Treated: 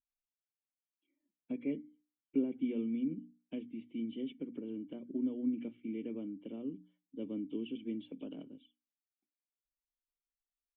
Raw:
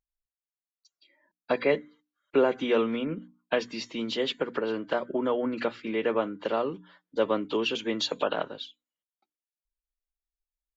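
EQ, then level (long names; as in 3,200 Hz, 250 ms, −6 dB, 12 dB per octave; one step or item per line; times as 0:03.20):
formant resonators in series i
high-frequency loss of the air 130 metres
tilt shelving filter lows +3.5 dB, about 710 Hz
−3.0 dB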